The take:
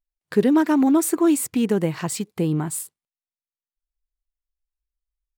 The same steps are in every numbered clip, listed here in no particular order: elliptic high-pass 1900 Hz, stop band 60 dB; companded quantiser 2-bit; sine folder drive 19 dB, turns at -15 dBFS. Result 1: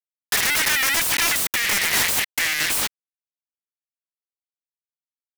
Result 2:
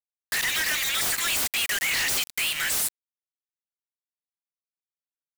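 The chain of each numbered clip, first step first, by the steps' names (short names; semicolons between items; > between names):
companded quantiser > elliptic high-pass > sine folder; elliptic high-pass > sine folder > companded quantiser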